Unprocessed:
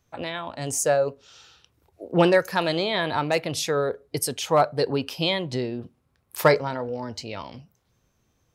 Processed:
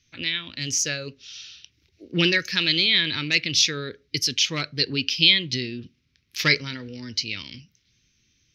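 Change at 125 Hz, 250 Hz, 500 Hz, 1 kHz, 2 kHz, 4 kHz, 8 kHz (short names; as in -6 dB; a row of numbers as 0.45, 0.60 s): -1.0, -2.0, -12.0, -14.5, +5.5, +11.0, +4.0 dB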